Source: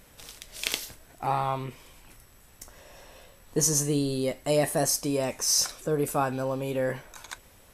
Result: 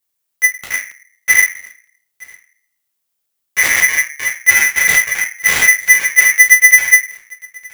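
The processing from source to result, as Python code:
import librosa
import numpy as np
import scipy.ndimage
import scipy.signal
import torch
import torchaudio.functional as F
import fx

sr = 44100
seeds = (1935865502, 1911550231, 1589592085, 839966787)

p1 = fx.lower_of_two(x, sr, delay_ms=0.57)
p2 = fx.rider(p1, sr, range_db=3, speed_s=0.5)
p3 = p1 + (p2 * librosa.db_to_amplitude(-1.5))
p4 = fx.schmitt(p3, sr, flips_db=-17.5)
p5 = fx.high_shelf(p4, sr, hz=9000.0, db=12.0)
p6 = fx.dmg_noise_colour(p5, sr, seeds[0], colour='violet', level_db=-66.0)
p7 = p6 + fx.echo_single(p6, sr, ms=923, db=-23.5, dry=0)
p8 = fx.leveller(p7, sr, passes=3)
p9 = fx.room_shoebox(p8, sr, seeds[1], volume_m3=180.0, walls='furnished', distance_m=2.6)
p10 = fx.buffer_crackle(p9, sr, first_s=0.91, period_s=0.48, block=128, kind='repeat')
p11 = p10 * np.sign(np.sin(2.0 * np.pi * 2000.0 * np.arange(len(p10)) / sr))
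y = p11 * librosa.db_to_amplitude(-5.0)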